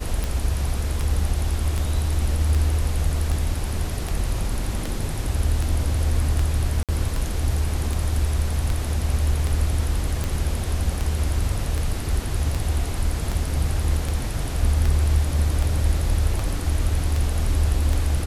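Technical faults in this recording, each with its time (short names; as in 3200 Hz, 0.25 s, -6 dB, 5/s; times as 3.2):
tick 78 rpm
6.83–6.89 gap 57 ms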